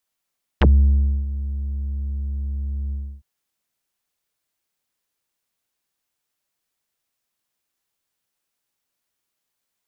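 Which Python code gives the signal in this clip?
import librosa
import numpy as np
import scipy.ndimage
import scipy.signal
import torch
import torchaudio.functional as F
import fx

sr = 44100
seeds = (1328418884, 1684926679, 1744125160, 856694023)

y = fx.sub_voice(sr, note=37, wave='square', cutoff_hz=120.0, q=5.0, env_oct=5.5, env_s=0.05, attack_ms=3.2, decay_s=0.64, sustain_db=-14.5, release_s=0.3, note_s=2.31, slope=12)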